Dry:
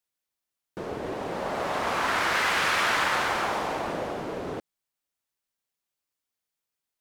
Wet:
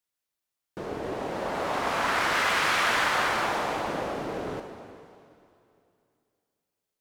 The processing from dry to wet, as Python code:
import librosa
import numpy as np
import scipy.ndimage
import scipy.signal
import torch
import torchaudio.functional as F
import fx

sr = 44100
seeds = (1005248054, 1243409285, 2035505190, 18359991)

y = fx.rev_plate(x, sr, seeds[0], rt60_s=2.6, hf_ratio=0.95, predelay_ms=0, drr_db=5.5)
y = y * 10.0 ** (-1.0 / 20.0)